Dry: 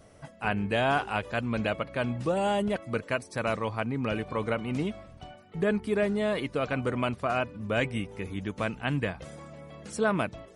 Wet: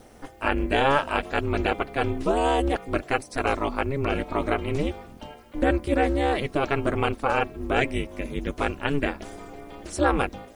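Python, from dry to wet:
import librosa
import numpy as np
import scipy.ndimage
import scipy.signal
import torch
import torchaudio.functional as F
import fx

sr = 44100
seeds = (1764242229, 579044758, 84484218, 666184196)

y = fx.quant_dither(x, sr, seeds[0], bits=12, dither='triangular')
y = y * np.sin(2.0 * np.pi * 140.0 * np.arange(len(y)) / sr)
y = y * librosa.db_to_amplitude(7.5)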